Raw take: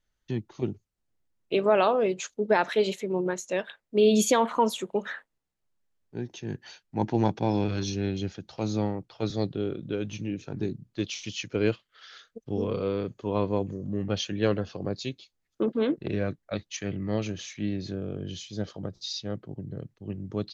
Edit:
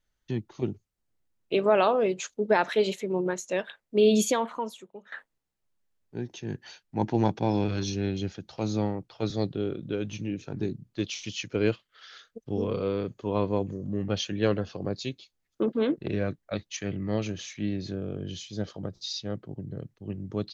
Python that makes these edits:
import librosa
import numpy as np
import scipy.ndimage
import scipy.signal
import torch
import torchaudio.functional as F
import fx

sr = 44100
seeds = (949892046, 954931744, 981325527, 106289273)

y = fx.edit(x, sr, fx.fade_out_to(start_s=4.13, length_s=0.99, curve='qua', floor_db=-18.5), tone=tone)